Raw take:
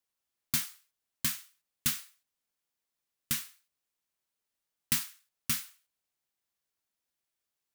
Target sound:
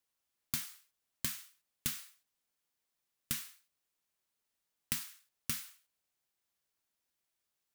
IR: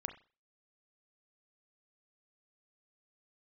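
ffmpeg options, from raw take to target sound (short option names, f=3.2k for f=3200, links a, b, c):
-af "acompressor=threshold=-34dB:ratio=5,volume=1dB"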